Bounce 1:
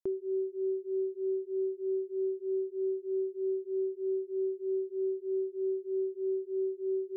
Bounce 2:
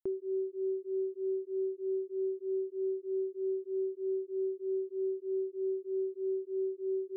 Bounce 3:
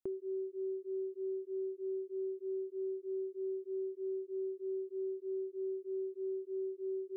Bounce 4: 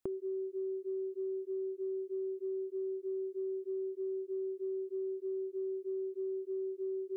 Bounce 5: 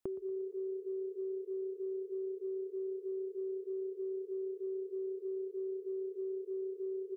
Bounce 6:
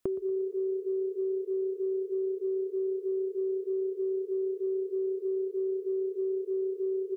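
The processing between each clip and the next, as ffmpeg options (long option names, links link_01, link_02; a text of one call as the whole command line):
ffmpeg -i in.wav -af "anlmdn=0.0398,volume=-1.5dB" out.wav
ffmpeg -i in.wav -af "acompressor=threshold=-35dB:ratio=2.5,volume=-2dB" out.wav
ffmpeg -i in.wav -af "acompressor=threshold=-42dB:ratio=6,volume=6.5dB" out.wav
ffmpeg -i in.wav -filter_complex "[0:a]asplit=5[link_01][link_02][link_03][link_04][link_05];[link_02]adelay=117,afreqshift=31,volume=-17dB[link_06];[link_03]adelay=234,afreqshift=62,volume=-23.2dB[link_07];[link_04]adelay=351,afreqshift=93,volume=-29.4dB[link_08];[link_05]adelay=468,afreqshift=124,volume=-35.6dB[link_09];[link_01][link_06][link_07][link_08][link_09]amix=inputs=5:normalize=0,volume=-1.5dB" out.wav
ffmpeg -i in.wav -af "asuperstop=centerf=830:order=4:qfactor=6,volume=8dB" out.wav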